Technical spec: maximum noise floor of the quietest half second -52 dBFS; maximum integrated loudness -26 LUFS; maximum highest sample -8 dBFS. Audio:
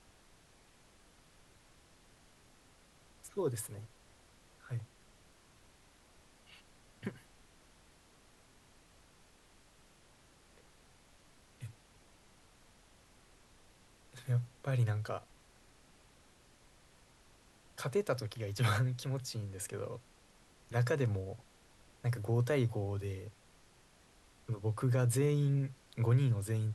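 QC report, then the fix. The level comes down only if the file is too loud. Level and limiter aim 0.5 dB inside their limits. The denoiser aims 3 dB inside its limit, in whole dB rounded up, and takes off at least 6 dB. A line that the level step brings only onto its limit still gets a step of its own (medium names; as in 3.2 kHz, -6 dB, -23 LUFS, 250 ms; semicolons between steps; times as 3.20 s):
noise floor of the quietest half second -64 dBFS: pass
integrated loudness -35.5 LUFS: pass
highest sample -19.5 dBFS: pass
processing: none needed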